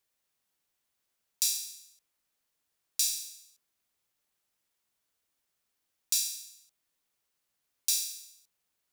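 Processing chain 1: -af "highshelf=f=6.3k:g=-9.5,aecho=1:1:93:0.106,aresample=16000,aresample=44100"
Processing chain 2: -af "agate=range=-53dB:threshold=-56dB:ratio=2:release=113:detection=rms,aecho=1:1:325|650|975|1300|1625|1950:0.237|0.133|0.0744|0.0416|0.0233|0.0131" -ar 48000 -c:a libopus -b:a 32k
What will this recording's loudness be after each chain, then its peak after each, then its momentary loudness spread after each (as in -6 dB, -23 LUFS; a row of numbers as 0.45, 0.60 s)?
-36.5, -32.0 LUFS; -18.5, -6.5 dBFS; 16, 22 LU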